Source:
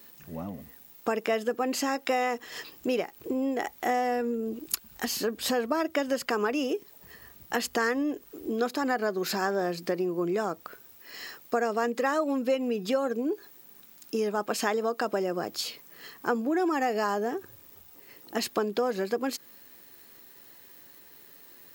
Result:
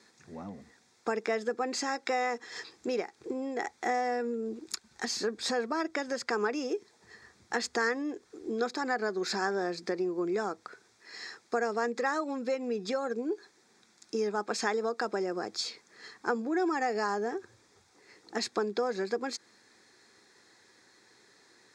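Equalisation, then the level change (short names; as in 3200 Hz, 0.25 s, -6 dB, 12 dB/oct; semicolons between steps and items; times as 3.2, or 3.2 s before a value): speaker cabinet 130–7300 Hz, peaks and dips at 160 Hz -10 dB, 270 Hz -7 dB, 600 Hz -9 dB, 1100 Hz -4 dB, 2800 Hz -8 dB; notch 3000 Hz, Q 6.7; 0.0 dB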